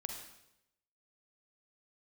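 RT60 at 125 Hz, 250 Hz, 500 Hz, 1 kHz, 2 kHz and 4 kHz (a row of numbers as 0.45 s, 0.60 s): 0.95 s, 0.85 s, 0.90 s, 0.80 s, 0.80 s, 0.80 s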